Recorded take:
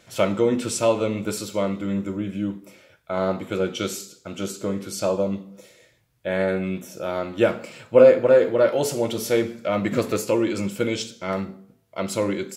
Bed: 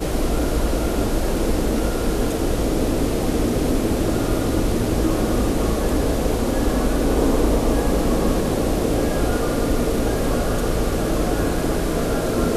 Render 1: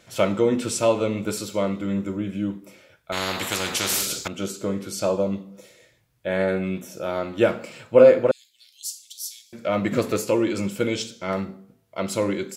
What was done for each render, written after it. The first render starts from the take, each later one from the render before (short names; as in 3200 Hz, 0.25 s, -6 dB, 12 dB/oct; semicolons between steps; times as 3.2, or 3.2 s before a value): 3.12–4.28 spectral compressor 4:1; 8.31–9.53 inverse Chebyshev high-pass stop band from 1300 Hz, stop band 60 dB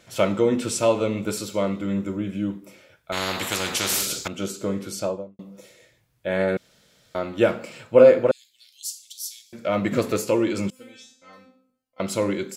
4.89–5.39 studio fade out; 6.57–7.15 room tone; 10.7–12 resonator 260 Hz, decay 0.43 s, mix 100%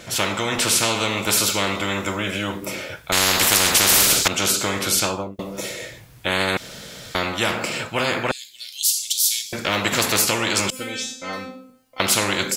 AGC gain up to 7 dB; spectral compressor 4:1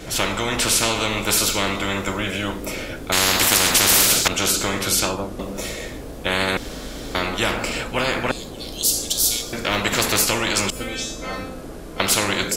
add bed -14.5 dB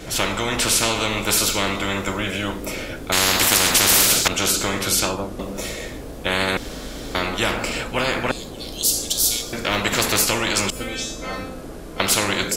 nothing audible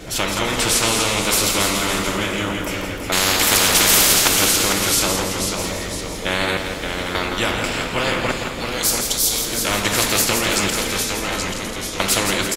echoes that change speed 0.199 s, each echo -1 st, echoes 2, each echo -6 dB; on a send: feedback echo 0.167 s, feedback 54%, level -7 dB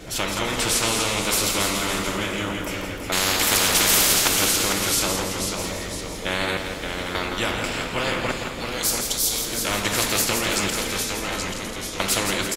gain -4 dB